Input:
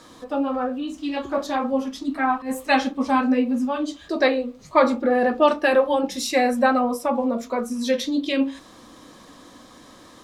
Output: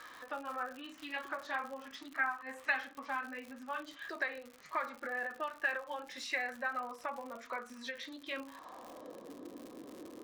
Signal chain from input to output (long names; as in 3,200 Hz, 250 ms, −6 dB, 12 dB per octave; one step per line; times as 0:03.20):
downward compressor 6 to 1, threshold −29 dBFS, peak gain reduction 17 dB
band-pass filter sweep 1,700 Hz → 380 Hz, 0:08.17–0:09.35
surface crackle 110 per second −46 dBFS
every ending faded ahead of time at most 170 dB per second
level +5 dB